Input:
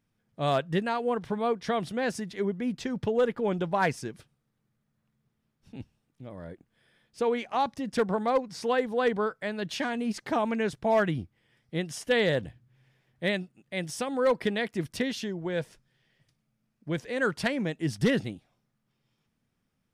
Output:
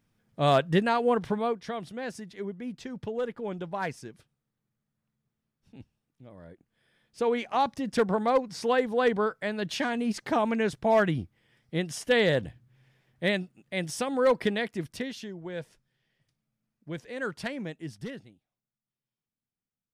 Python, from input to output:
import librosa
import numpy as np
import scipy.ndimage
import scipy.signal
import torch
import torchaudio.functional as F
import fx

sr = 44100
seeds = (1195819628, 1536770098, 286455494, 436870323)

y = fx.gain(x, sr, db=fx.line((1.25, 4.0), (1.72, -6.5), (6.51, -6.5), (7.4, 1.5), (14.45, 1.5), (15.14, -6.0), (17.71, -6.0), (18.3, -19.0)))